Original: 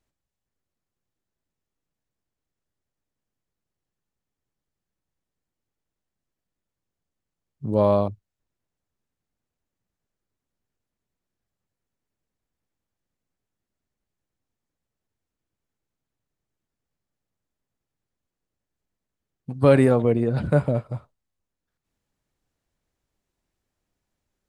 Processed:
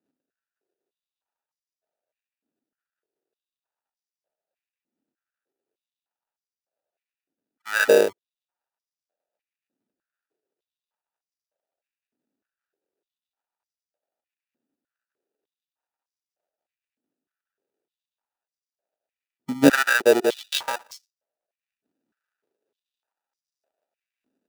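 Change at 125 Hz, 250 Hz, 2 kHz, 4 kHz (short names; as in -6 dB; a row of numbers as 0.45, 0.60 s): -17.0 dB, -1.0 dB, +14.0 dB, n/a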